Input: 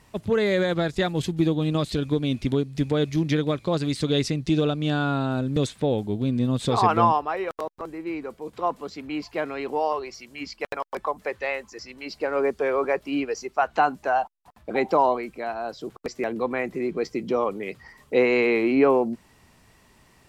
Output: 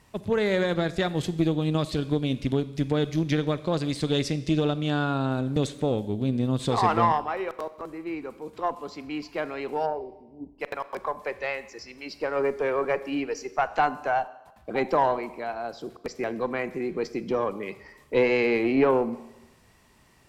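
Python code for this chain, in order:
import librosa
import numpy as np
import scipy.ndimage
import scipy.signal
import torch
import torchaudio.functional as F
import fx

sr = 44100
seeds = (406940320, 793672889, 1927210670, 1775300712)

y = fx.brickwall_lowpass(x, sr, high_hz=1000.0, at=(9.85, 10.58), fade=0.02)
y = fx.rev_schroeder(y, sr, rt60_s=1.0, comb_ms=30, drr_db=14.0)
y = fx.cheby_harmonics(y, sr, harmonics=(4,), levels_db=(-22,), full_scale_db=-6.0)
y = y * 10.0 ** (-2.5 / 20.0)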